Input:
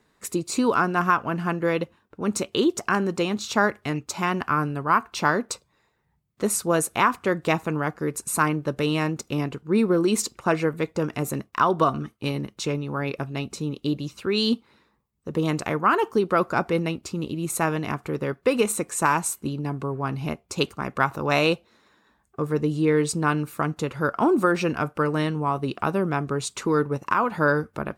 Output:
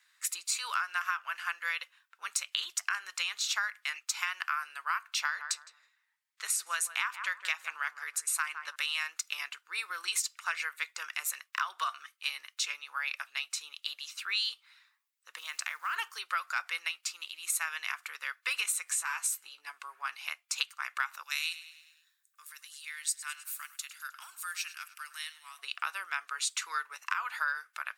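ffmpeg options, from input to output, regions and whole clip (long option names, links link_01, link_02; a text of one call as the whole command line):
ffmpeg -i in.wav -filter_complex "[0:a]asettb=1/sr,asplit=3[link_01][link_02][link_03];[link_01]atrim=end=5.214[link_04];[link_02]atrim=start=5.21:end=8.76,asetpts=PTS-STARTPTS,afade=type=in:duration=0.004:curve=qsin,afade=type=out:start_time=3.546:duration=0.004:curve=qsin,highshelf=frequency=12000:gain=-8,asplit=2[link_05][link_06];[link_06]adelay=161,lowpass=frequency=930:poles=1,volume=-9.5dB,asplit=2[link_07][link_08];[link_08]adelay=161,lowpass=frequency=930:poles=1,volume=0.3,asplit=2[link_09][link_10];[link_10]adelay=161,lowpass=frequency=930:poles=1,volume=0.3[link_11];[link_05][link_07][link_09][link_11]amix=inputs=4:normalize=0,atrim=end_sample=156555[link_12];[link_03]atrim=start=8.756[link_13];[link_04][link_12]acrossfade=duration=0.004:curve1=hsin:curve2=qsin[link_14];[link_14][link_13]acrossfade=duration=0.004:curve1=qsin:curve2=hsin,asettb=1/sr,asplit=3[link_15][link_16][link_17];[link_15]atrim=end=15.384[link_18];[link_16]atrim=start=15.38:end=15.96,asetpts=PTS-STARTPTS,afade=type=in:duration=0.004:curve=qsin,afade=type=out:start_time=0.576:duration=0.004:curve=qsin,bandreject=frequency=410:width=6.5,acompressor=threshold=-27dB:ratio=3:attack=3.2:release=140:knee=1:detection=peak,acrusher=bits=9:mode=log:mix=0:aa=0.000001[link_19];[link_17]atrim=start=15.956[link_20];[link_18][link_19]acrossfade=duration=0.004:curve1=hsin:curve2=qsin[link_21];[link_21][link_20]acrossfade=duration=0.004:curve1=qsin:curve2=hsin,asettb=1/sr,asplit=3[link_22][link_23][link_24];[link_22]atrim=end=18.854[link_25];[link_23]atrim=start=18.85:end=19.67,asetpts=PTS-STARTPTS,afade=type=in:duration=0.004:curve=qsin,afade=type=out:start_time=0.816:duration=0.004:curve=qsin,equalizer=frequency=200:width_type=o:width=2.2:gain=11.5,acompressor=threshold=-28dB:ratio=2:attack=3.2:release=140:knee=1:detection=peak,asplit=2[link_26][link_27];[link_27]adelay=16,volume=-6dB[link_28];[link_26][link_28]amix=inputs=2:normalize=0,atrim=end_sample=36162[link_29];[link_24]atrim=start=19.666[link_30];[link_25][link_29]acrossfade=duration=0.004:curve1=hsin:curve2=qsin[link_31];[link_31][link_30]acrossfade=duration=0.004:curve1=qsin:curve2=hsin,asettb=1/sr,asplit=3[link_32][link_33][link_34];[link_32]atrim=end=21.234[link_35];[link_33]atrim=start=21.23:end=25.59,asetpts=PTS-STARTPTS,afade=type=in:duration=0.004:curve=qsin,afade=type=out:start_time=4.356:duration=0.004:curve=qsin,aderivative,aecho=1:1:103|206|309|412|515:0.15|0.0808|0.0436|0.0236|0.0127,atrim=end_sample=192276[link_36];[link_34]atrim=start=25.586[link_37];[link_35][link_36]acrossfade=duration=0.004:curve1=hsin:curve2=qsin[link_38];[link_38][link_37]acrossfade=duration=0.004:curve1=qsin:curve2=hsin,highpass=frequency=1500:width=0.5412,highpass=frequency=1500:width=1.3066,acompressor=threshold=-31dB:ratio=6,volume=3dB" out.wav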